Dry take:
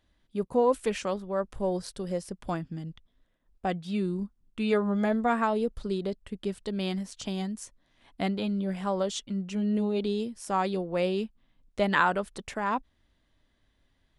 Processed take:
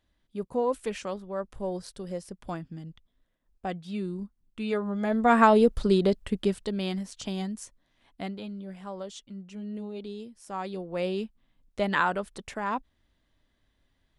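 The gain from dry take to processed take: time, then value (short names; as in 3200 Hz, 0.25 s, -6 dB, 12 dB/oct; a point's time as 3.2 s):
5 s -3.5 dB
5.41 s +8.5 dB
6.34 s +8.5 dB
6.81 s 0 dB
7.6 s 0 dB
8.59 s -9.5 dB
10.39 s -9.5 dB
11.11 s -1.5 dB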